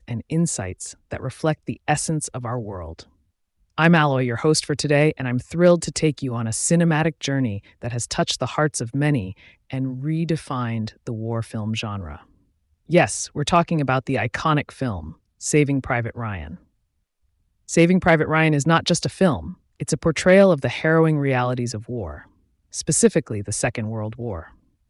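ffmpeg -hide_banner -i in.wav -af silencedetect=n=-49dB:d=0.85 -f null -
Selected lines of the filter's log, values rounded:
silence_start: 16.63
silence_end: 17.68 | silence_duration: 1.05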